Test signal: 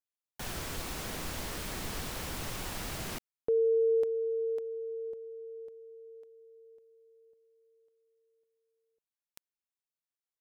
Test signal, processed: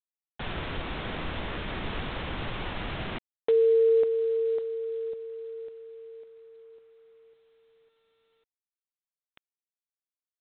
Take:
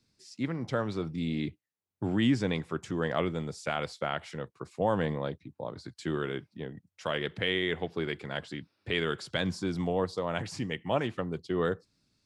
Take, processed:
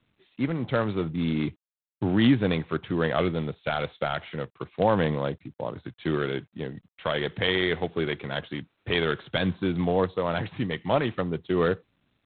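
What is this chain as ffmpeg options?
-af "volume=5.5dB" -ar 8000 -c:a adpcm_g726 -b:a 24k

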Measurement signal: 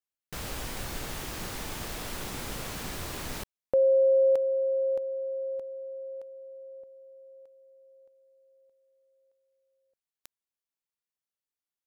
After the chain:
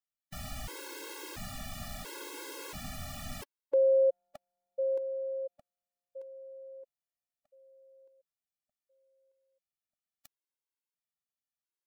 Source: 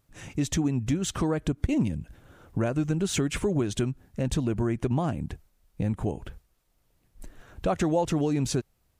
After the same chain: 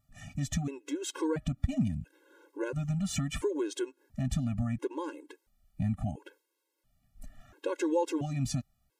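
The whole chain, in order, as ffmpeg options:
-af "afftfilt=real='re*gt(sin(2*PI*0.73*pts/sr)*(1-2*mod(floor(b*sr/1024/280),2)),0)':imag='im*gt(sin(2*PI*0.73*pts/sr)*(1-2*mod(floor(b*sr/1024/280),2)),0)':win_size=1024:overlap=0.75,volume=-2.5dB"

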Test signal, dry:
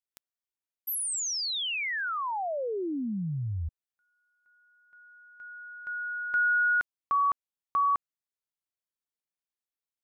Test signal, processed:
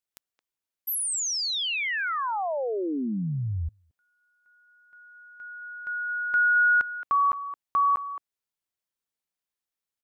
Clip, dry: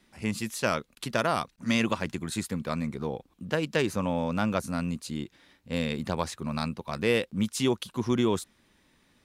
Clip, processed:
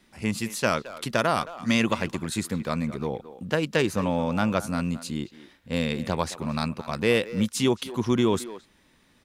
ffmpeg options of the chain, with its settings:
-filter_complex "[0:a]asplit=2[a][b];[b]adelay=220,highpass=300,lowpass=3.4k,asoftclip=type=hard:threshold=-21.5dB,volume=-13dB[c];[a][c]amix=inputs=2:normalize=0,volume=3dB"

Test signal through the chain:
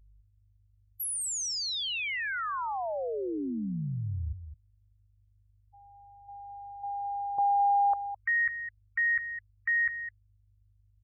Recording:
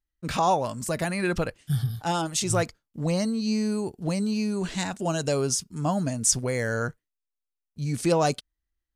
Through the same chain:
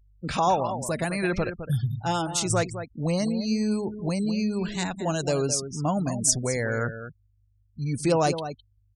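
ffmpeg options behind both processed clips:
-filter_complex "[0:a]aeval=exprs='val(0)+0.00178*(sin(2*PI*50*n/s)+sin(2*PI*2*50*n/s)/2+sin(2*PI*3*50*n/s)/3+sin(2*PI*4*50*n/s)/4+sin(2*PI*5*50*n/s)/5)':c=same,asplit=2[a][b];[b]adelay=209.9,volume=-10dB,highshelf=f=4k:g=-4.72[c];[a][c]amix=inputs=2:normalize=0,afftfilt=real='re*gte(hypot(re,im),0.0126)':imag='im*gte(hypot(re,im),0.0126)':win_size=1024:overlap=0.75"

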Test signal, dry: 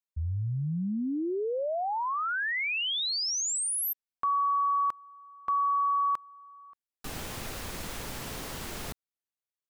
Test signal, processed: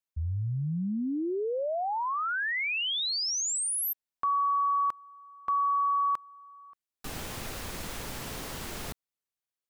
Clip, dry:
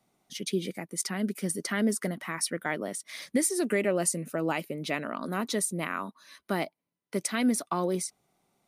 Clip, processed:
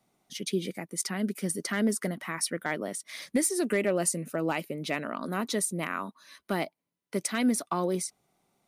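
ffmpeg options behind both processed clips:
-af "asoftclip=type=hard:threshold=-17.5dB"

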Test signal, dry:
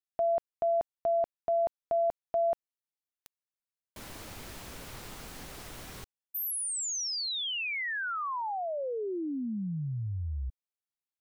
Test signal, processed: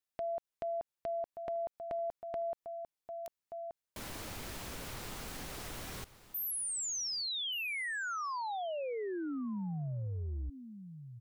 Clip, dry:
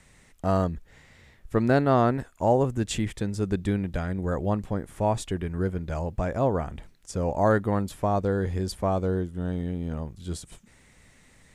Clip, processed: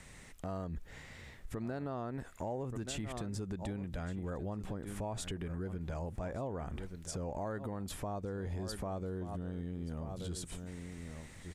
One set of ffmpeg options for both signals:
-af "aecho=1:1:1178:0.133,acompressor=threshold=-38dB:ratio=6:attack=1.7:release=79:knee=6:detection=rms,volume=2.5dB"

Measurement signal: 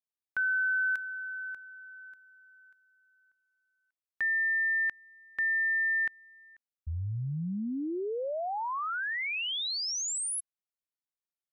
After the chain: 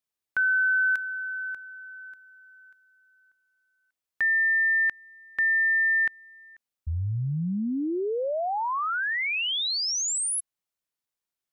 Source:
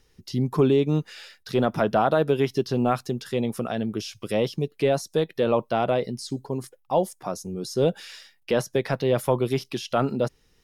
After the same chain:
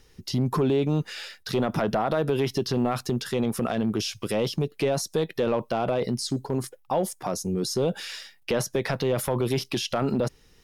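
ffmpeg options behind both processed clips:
-af "acompressor=threshold=-25dB:ratio=4:attack=0.33:release=25:knee=1:detection=rms,volume=5.5dB"

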